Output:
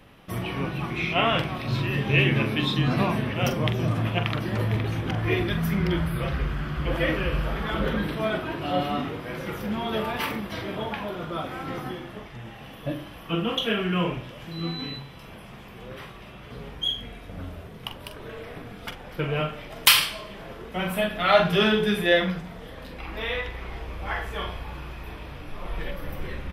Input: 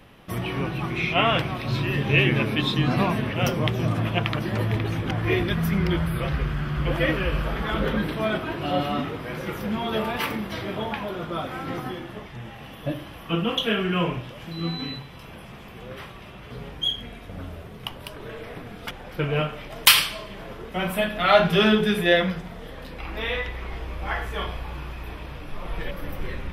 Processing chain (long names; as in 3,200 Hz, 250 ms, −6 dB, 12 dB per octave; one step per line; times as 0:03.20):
double-tracking delay 44 ms −9 dB
level −2 dB